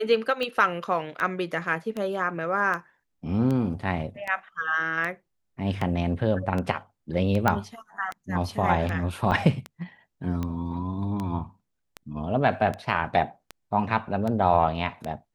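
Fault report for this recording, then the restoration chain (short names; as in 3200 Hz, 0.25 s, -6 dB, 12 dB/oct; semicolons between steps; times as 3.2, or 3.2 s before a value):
tick 78 rpm -18 dBFS
7.48 pop -8 dBFS
9.31–9.32 gap 7.8 ms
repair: de-click; interpolate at 9.31, 7.8 ms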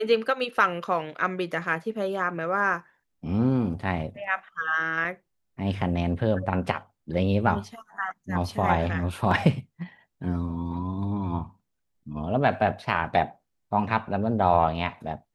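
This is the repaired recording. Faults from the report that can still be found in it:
none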